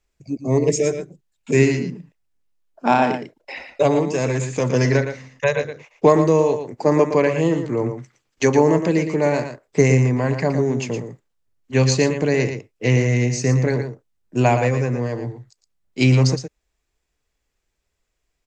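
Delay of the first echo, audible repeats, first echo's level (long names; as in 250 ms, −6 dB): 115 ms, 1, −8.5 dB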